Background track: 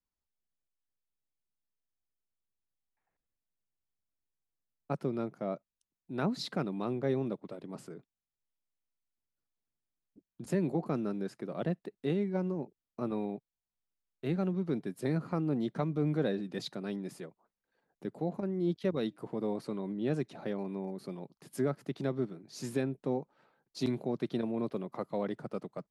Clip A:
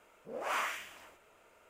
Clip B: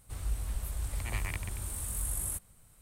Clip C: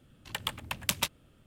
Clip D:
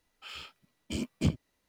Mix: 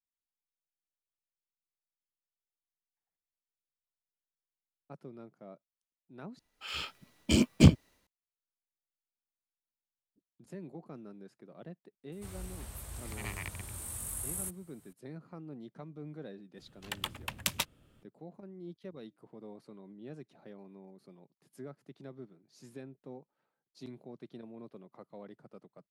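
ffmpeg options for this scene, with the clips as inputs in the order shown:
-filter_complex "[0:a]volume=-14.5dB[a];[4:a]dynaudnorm=f=140:g=5:m=12.5dB[b];[2:a]highpass=91[c];[a]asplit=2[d][e];[d]atrim=end=6.394[f];[b]atrim=end=1.68,asetpts=PTS-STARTPTS,volume=-3dB[g];[e]atrim=start=8.066[h];[c]atrim=end=2.81,asetpts=PTS-STARTPTS,volume=-2dB,afade=t=in:d=0.004:c=hsin,afade=t=out:st=2.806:d=0.004:c=hsin,adelay=12120[i];[3:a]atrim=end=1.46,asetpts=PTS-STARTPTS,volume=-3dB,afade=t=in:d=0.004:c=hsin,afade=t=out:st=1.456:d=0.004:c=hsin,adelay=16570[j];[f][g]acrossfade=d=0.004:c1=hsin:c2=hsin[k];[k][h]acrossfade=d=0.004:c1=hsin:c2=hsin[l];[l][i][j]amix=inputs=3:normalize=0"

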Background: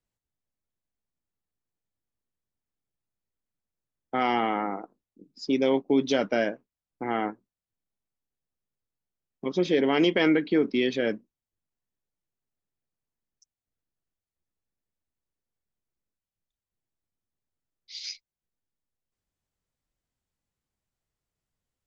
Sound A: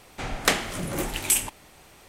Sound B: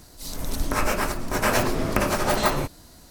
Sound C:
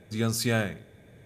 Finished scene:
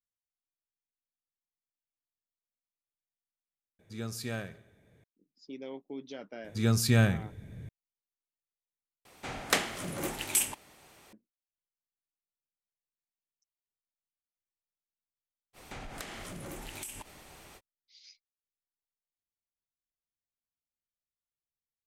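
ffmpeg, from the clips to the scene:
-filter_complex "[3:a]asplit=2[a][b];[1:a]asplit=2[c][d];[0:a]volume=-19dB[e];[a]aecho=1:1:69|138|207|276|345:0.1|0.058|0.0336|0.0195|0.0113[f];[b]asubboost=boost=9.5:cutoff=240[g];[c]highpass=f=120:p=1[h];[d]acompressor=threshold=-39dB:ratio=6:attack=3.2:release=140:knee=1:detection=peak[i];[e]asplit=3[j][k][l];[j]atrim=end=3.794[m];[f]atrim=end=1.25,asetpts=PTS-STARTPTS,volume=-11dB[n];[k]atrim=start=5.036:end=9.054[o];[h]atrim=end=2.08,asetpts=PTS-STARTPTS,volume=-5.5dB[p];[l]atrim=start=11.126[q];[g]atrim=end=1.25,asetpts=PTS-STARTPTS,volume=-1dB,afade=t=in:d=0.004:c=hsin,afade=t=out:st=1.246:d=0.004:c=hsin,adelay=6440[r];[i]atrim=end=2.08,asetpts=PTS-STARTPTS,volume=-1dB,afade=t=in:d=0.05,afade=t=out:st=2.03:d=0.05,adelay=15530[s];[m][n]acrossfade=d=0.004:c1=hsin:c2=hsin[t];[t][o]acrossfade=d=0.004:c1=hsin:c2=hsin[u];[u][p]acrossfade=d=0.004:c1=hsin:c2=hsin[v];[v][q]acrossfade=d=0.004:c1=hsin:c2=hsin[w];[w][r][s]amix=inputs=3:normalize=0"

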